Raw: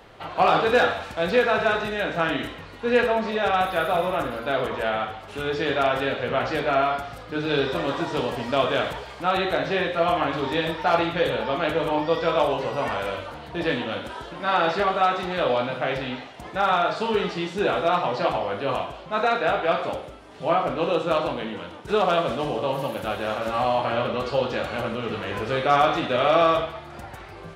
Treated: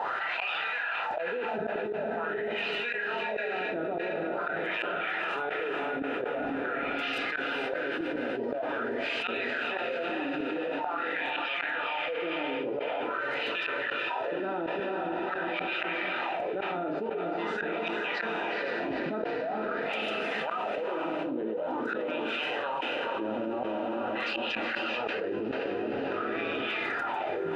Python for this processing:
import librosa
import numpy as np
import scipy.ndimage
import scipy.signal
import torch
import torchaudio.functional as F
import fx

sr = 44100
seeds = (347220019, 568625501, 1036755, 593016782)

y = fx.dynamic_eq(x, sr, hz=1700.0, q=1.7, threshold_db=-39.0, ratio=4.0, max_db=5)
y = fx.wah_lfo(y, sr, hz=0.46, low_hz=280.0, high_hz=2700.0, q=4.4)
y = fx.notch_comb(y, sr, f0_hz=1100.0)
y = fx.gate_flip(y, sr, shuts_db=-28.0, range_db=-25)
y = fx.echo_diffused(y, sr, ms=467, feedback_pct=57, wet_db=-10)
y = fx.env_flatten(y, sr, amount_pct=100)
y = F.gain(torch.from_numpy(y), 2.0).numpy()